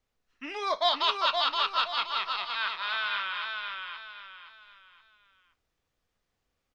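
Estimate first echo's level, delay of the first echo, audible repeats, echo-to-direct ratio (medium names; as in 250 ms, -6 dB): -4.5 dB, 521 ms, 4, -4.0 dB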